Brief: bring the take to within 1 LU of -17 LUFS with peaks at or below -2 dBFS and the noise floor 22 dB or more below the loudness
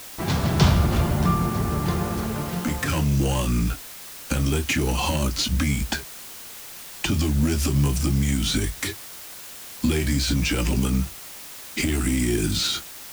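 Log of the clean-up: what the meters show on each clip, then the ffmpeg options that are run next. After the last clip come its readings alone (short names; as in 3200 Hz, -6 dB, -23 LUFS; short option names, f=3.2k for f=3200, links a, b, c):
noise floor -40 dBFS; noise floor target -46 dBFS; loudness -23.5 LUFS; peak -6.0 dBFS; loudness target -17.0 LUFS
-> -af "afftdn=nr=6:nf=-40"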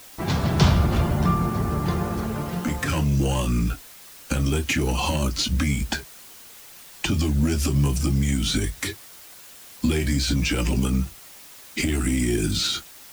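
noise floor -45 dBFS; noise floor target -46 dBFS
-> -af "afftdn=nr=6:nf=-45"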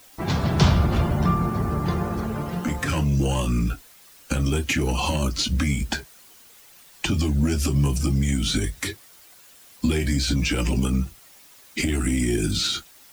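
noise floor -51 dBFS; loudness -24.0 LUFS; peak -6.0 dBFS; loudness target -17.0 LUFS
-> -af "volume=7dB,alimiter=limit=-2dB:level=0:latency=1"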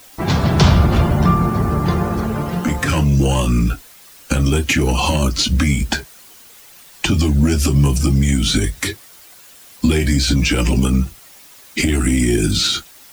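loudness -17.0 LUFS; peak -2.0 dBFS; noise floor -44 dBFS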